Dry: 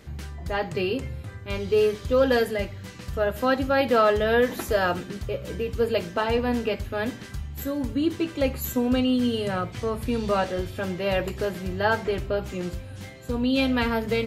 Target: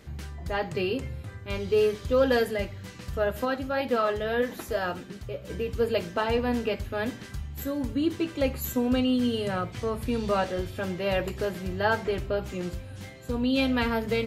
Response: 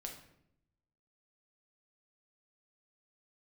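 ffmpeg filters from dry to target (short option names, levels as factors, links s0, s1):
-filter_complex "[0:a]asplit=3[s0][s1][s2];[s0]afade=t=out:st=3.44:d=0.02[s3];[s1]flanger=delay=3.3:depth=5.3:regen=73:speed=1.8:shape=triangular,afade=t=in:st=3.44:d=0.02,afade=t=out:st=5.49:d=0.02[s4];[s2]afade=t=in:st=5.49:d=0.02[s5];[s3][s4][s5]amix=inputs=3:normalize=0,volume=0.794"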